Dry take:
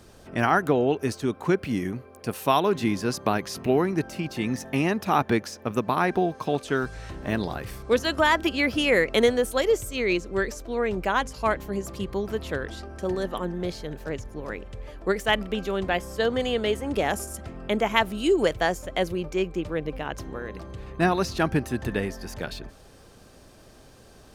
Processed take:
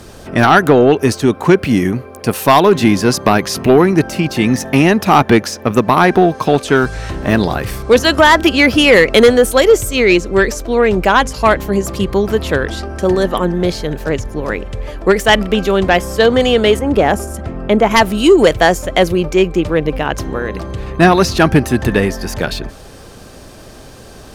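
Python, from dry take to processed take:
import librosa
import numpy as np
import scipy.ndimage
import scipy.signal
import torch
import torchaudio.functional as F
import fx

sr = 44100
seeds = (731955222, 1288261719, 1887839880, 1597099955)

p1 = fx.high_shelf(x, sr, hz=2200.0, db=-10.0, at=(16.79, 17.91))
p2 = fx.fold_sine(p1, sr, drive_db=10, ceiling_db=-4.0)
p3 = p1 + (p2 * 10.0 ** (-7.0 / 20.0))
y = p3 * 10.0 ** (4.5 / 20.0)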